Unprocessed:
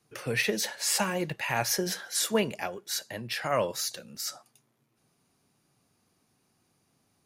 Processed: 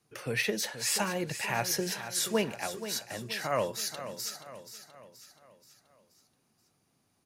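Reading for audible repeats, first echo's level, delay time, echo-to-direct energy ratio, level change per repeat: 4, -11.5 dB, 0.478 s, -10.5 dB, -6.0 dB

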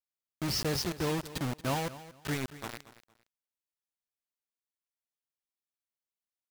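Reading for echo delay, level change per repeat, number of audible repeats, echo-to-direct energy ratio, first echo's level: 0.23 s, -12.5 dB, 2, -16.0 dB, -16.0 dB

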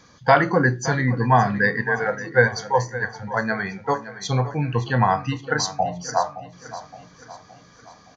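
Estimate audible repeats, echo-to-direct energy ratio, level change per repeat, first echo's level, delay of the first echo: 4, -13.5 dB, -6.0 dB, -14.5 dB, 0.568 s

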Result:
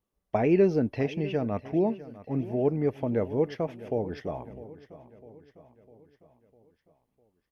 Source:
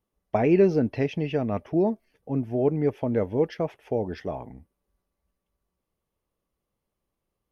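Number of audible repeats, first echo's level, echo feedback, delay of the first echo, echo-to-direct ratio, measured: 4, -17.0 dB, 53%, 0.653 s, -15.5 dB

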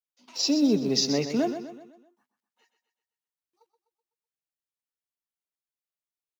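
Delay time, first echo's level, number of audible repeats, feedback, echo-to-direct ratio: 0.126 s, -10.0 dB, 4, 47%, -9.0 dB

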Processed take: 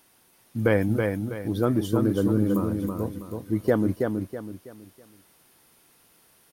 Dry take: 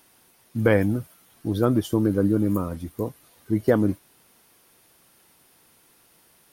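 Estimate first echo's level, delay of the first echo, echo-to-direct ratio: -4.5 dB, 0.325 s, -4.0 dB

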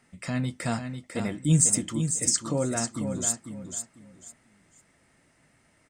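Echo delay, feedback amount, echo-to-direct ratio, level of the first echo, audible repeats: 0.497 s, 23%, -7.5 dB, -7.5 dB, 3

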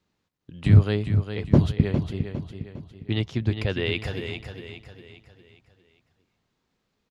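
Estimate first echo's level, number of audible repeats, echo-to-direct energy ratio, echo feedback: -8.0 dB, 4, -7.0 dB, 43%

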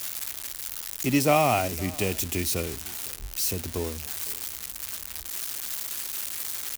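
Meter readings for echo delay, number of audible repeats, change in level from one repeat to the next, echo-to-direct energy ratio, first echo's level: 0.51 s, 1, no steady repeat, -22.0 dB, -22.0 dB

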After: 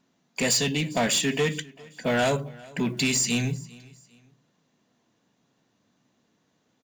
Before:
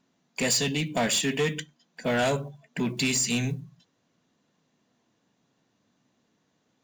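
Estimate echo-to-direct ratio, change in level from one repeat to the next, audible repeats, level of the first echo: -22.5 dB, -9.5 dB, 2, -23.0 dB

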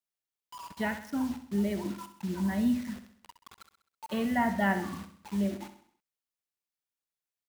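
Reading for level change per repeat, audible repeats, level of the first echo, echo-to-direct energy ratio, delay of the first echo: -6.0 dB, 4, -11.0 dB, -10.0 dB, 65 ms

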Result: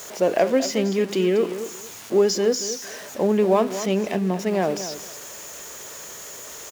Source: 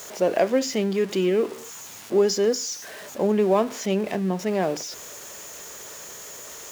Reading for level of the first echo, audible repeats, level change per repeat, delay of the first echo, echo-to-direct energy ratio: -12.0 dB, 2, -14.5 dB, 0.229 s, -12.0 dB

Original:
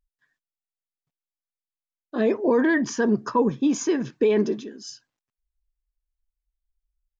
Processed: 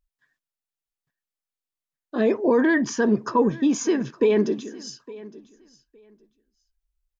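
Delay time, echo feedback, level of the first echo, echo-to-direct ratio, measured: 0.862 s, 18%, -20.0 dB, -20.0 dB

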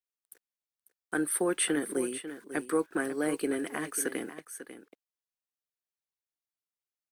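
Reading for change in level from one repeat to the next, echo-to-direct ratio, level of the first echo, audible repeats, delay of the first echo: no steady repeat, -12.0 dB, -12.0 dB, 1, 0.545 s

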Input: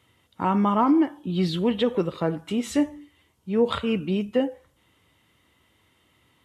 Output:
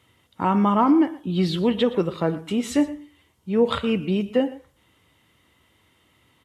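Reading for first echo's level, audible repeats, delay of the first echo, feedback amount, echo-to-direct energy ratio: -17.5 dB, 1, 0.119 s, no steady repeat, -17.5 dB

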